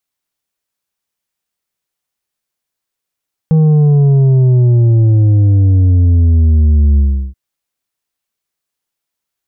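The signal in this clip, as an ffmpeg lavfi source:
-f lavfi -i "aevalsrc='0.473*clip((3.83-t)/0.36,0,1)*tanh(2*sin(2*PI*160*3.83/log(65/160)*(exp(log(65/160)*t/3.83)-1)))/tanh(2)':d=3.83:s=44100"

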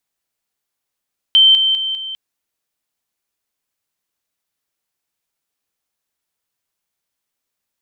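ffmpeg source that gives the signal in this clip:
-f lavfi -i "aevalsrc='pow(10,(-6-6*floor(t/0.2))/20)*sin(2*PI*3110*t)':d=0.8:s=44100"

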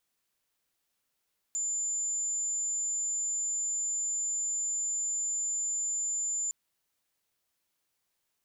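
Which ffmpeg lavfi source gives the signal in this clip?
-f lavfi -i "aevalsrc='0.0355*sin(2*PI*7120*t)':d=4.96:s=44100"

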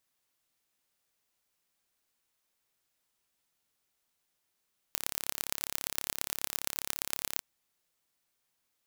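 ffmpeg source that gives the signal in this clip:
-f lavfi -i "aevalsrc='0.75*eq(mod(n,1267),0)*(0.5+0.5*eq(mod(n,5068),0))':d=2.47:s=44100"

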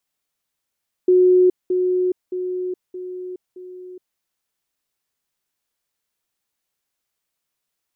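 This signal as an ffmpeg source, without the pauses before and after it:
-f lavfi -i "aevalsrc='pow(10,(-10-6*floor(t/0.62))/20)*sin(2*PI*365*t)*clip(min(mod(t,0.62),0.42-mod(t,0.62))/0.005,0,1)':d=3.1:s=44100"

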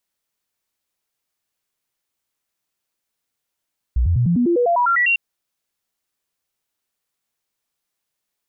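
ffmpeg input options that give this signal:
-f lavfi -i "aevalsrc='0.211*clip(min(mod(t,0.1),0.1-mod(t,0.1))/0.005,0,1)*sin(2*PI*60.8*pow(2,floor(t/0.1)/2)*mod(t,0.1))':d=1.2:s=44100"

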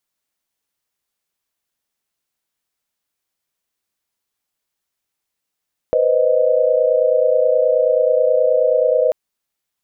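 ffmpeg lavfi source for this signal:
-f lavfi -i "aevalsrc='0.15*(sin(2*PI*493.88*t)+sin(2*PI*523.25*t)+sin(2*PI*622.25*t))':d=3.19:s=44100"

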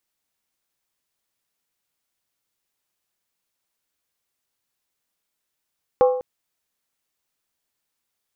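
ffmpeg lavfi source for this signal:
-f lavfi -i "aevalsrc='0.316*pow(10,-3*t/0.67)*sin(2*PI*505*t)+0.133*pow(10,-3*t/0.531)*sin(2*PI*805*t)+0.0562*pow(10,-3*t/0.458)*sin(2*PI*1078.7*t)+0.0237*pow(10,-3*t/0.442)*sin(2*PI*1159.5*t)+0.01*pow(10,-3*t/0.411)*sin(2*PI*1339.8*t)':d=0.2:s=44100"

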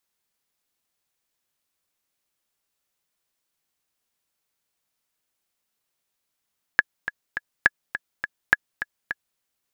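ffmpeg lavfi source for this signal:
-f lavfi -i "aevalsrc='pow(10,(-1.5-12*gte(mod(t,3*60/207),60/207))/20)*sin(2*PI*1690*mod(t,60/207))*exp(-6.91*mod(t,60/207)/0.03)':d=2.6:s=44100"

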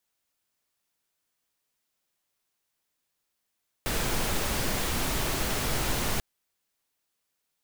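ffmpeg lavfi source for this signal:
-f lavfi -i "anoisesrc=c=pink:a=0.204:d=2.34:r=44100:seed=1"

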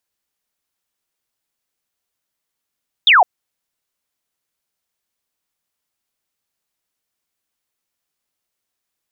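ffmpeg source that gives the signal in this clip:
-f lavfi -i "aevalsrc='0.473*clip(t/0.002,0,1)*clip((0.16-t)/0.002,0,1)*sin(2*PI*3800*0.16/log(660/3800)*(exp(log(660/3800)*t/0.16)-1))':d=0.16:s=44100"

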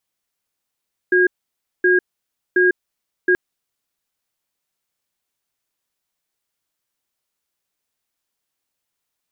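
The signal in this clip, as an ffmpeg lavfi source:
-f lavfi -i "aevalsrc='0.2*(sin(2*PI*363*t)+sin(2*PI*1630*t))*clip(min(mod(t,0.72),0.15-mod(t,0.72))/0.005,0,1)':d=2.23:s=44100"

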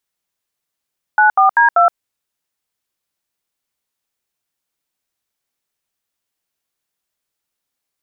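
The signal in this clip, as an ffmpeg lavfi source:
-f lavfi -i "aevalsrc='0.316*clip(min(mod(t,0.194),0.12-mod(t,0.194))/0.002,0,1)*(eq(floor(t/0.194),0)*(sin(2*PI*852*mod(t,0.194))+sin(2*PI*1477*mod(t,0.194)))+eq(floor(t/0.194),1)*(sin(2*PI*770*mod(t,0.194))+sin(2*PI*1209*mod(t,0.194)))+eq(floor(t/0.194),2)*(sin(2*PI*941*mod(t,0.194))+sin(2*PI*1633*mod(t,0.194)))+eq(floor(t/0.194),3)*(sin(2*PI*697*mod(t,0.194))+sin(2*PI*1336*mod(t,0.194))))':d=0.776:s=44100"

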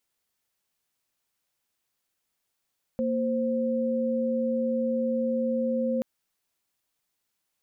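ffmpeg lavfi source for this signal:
-f lavfi -i "aevalsrc='0.0473*(sin(2*PI*233.08*t)+sin(2*PI*523.25*t))':d=3.03:s=44100"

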